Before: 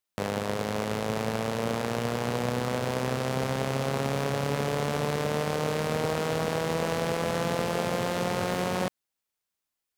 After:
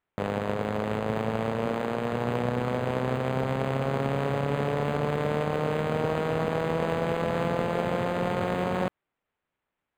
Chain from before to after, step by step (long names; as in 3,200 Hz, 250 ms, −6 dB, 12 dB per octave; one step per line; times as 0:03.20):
0:01.65–0:02.13: high-pass filter 150 Hz
linearly interpolated sample-rate reduction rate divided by 8×
level +1.5 dB